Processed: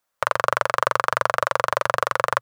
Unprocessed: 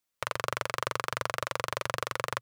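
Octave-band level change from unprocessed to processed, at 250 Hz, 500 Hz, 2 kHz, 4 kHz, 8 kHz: +4.0 dB, +11.5 dB, +10.5 dB, +4.0 dB, +4.0 dB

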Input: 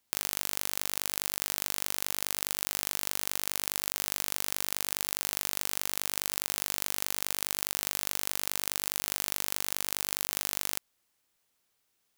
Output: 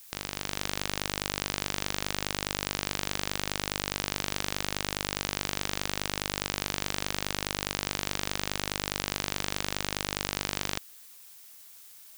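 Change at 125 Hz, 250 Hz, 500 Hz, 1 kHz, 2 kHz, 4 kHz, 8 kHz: +12.0 dB, +10.0 dB, +7.5 dB, +5.5 dB, +5.0 dB, +3.5 dB, -3.5 dB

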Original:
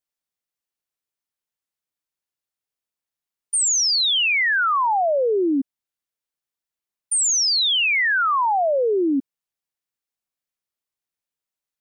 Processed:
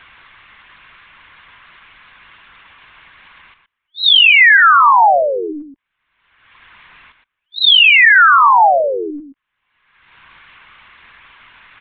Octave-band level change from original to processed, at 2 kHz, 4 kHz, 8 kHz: +12.0 dB, +8.5 dB, under -40 dB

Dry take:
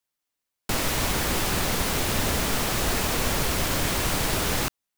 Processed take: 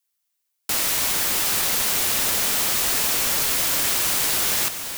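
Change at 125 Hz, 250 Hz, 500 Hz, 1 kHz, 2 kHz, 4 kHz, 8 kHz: -11.5 dB, -7.5 dB, -4.5 dB, -1.5 dB, +1.5 dB, +4.5 dB, +7.5 dB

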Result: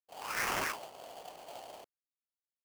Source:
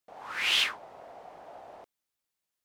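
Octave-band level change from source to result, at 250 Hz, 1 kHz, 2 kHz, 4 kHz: +5.5 dB, +2.0 dB, -6.0 dB, -15.5 dB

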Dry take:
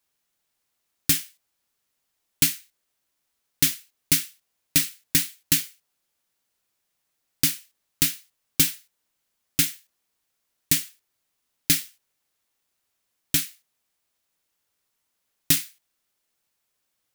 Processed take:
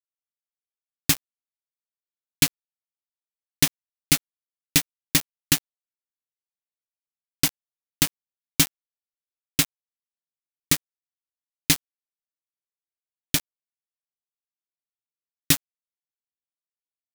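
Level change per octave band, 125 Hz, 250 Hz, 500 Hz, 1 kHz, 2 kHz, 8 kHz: +3.0 dB, +3.0 dB, +6.5 dB, +9.0 dB, +2.5 dB, -0.5 dB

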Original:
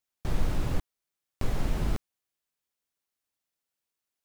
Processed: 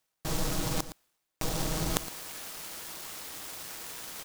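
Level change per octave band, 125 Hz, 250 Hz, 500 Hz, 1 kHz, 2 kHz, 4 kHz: -3.5 dB, +1.0 dB, +3.0 dB, +4.5 dB, +5.0 dB, +11.0 dB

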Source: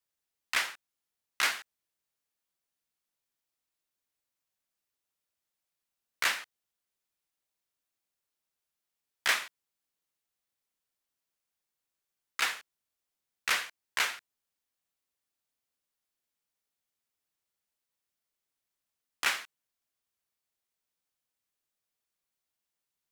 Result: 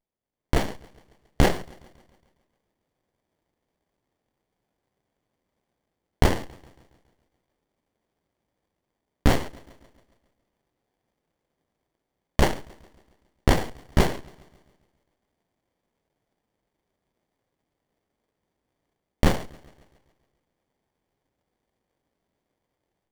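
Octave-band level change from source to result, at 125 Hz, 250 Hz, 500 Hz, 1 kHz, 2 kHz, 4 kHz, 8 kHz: no reading, +31.5 dB, +21.5 dB, +7.5 dB, -2.5 dB, -1.5 dB, -1.0 dB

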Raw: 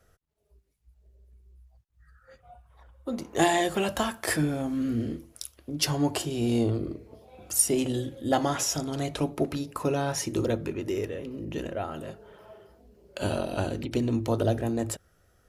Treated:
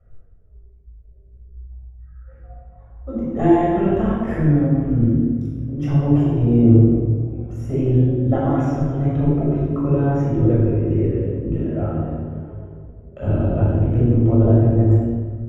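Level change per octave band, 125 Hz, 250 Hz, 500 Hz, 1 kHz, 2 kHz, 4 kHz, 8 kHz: +17.0 dB, +11.5 dB, +7.5 dB, +3.0 dB, -3.5 dB, under -15 dB, under -25 dB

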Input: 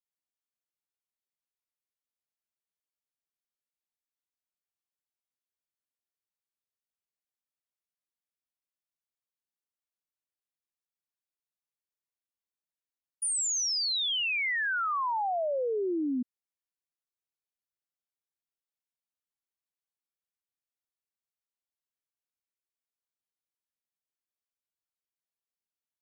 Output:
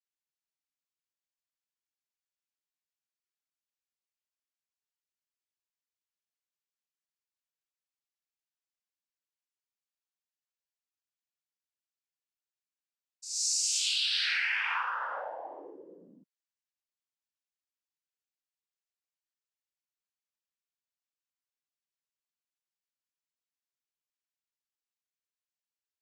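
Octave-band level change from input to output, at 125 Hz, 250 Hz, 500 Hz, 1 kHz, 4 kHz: no reading, -23.0 dB, -14.0 dB, -6.0 dB, -0.5 dB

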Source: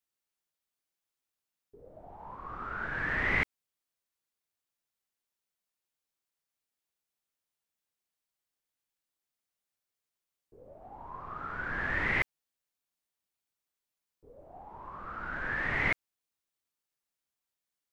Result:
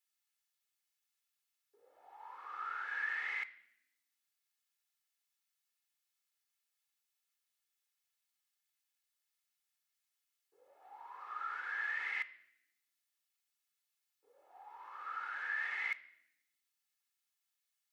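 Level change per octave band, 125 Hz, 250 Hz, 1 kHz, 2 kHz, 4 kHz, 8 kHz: under -40 dB, under -30 dB, -5.0 dB, -6.5 dB, -7.0 dB, no reading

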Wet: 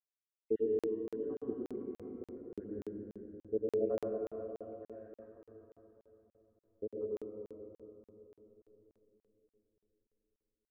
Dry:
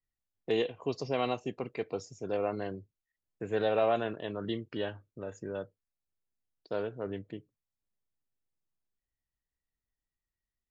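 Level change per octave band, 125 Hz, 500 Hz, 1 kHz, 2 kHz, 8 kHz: -12.0 dB, -4.0 dB, -19.5 dB, under -20 dB, no reading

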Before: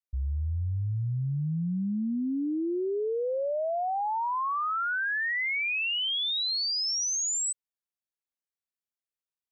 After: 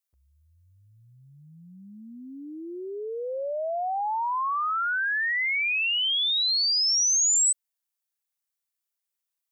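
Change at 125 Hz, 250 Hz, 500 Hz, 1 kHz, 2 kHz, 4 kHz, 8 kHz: under -20 dB, -11.5 dB, -2.0 dB, +2.0 dB, +3.0 dB, +5.0 dB, +7.5 dB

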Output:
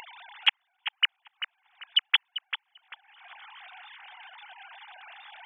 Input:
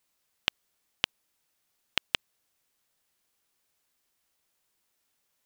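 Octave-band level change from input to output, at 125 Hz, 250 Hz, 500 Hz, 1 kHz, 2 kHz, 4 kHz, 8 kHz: under -30 dB, under -30 dB, under -10 dB, +5.5 dB, +7.0 dB, +8.5 dB, under -20 dB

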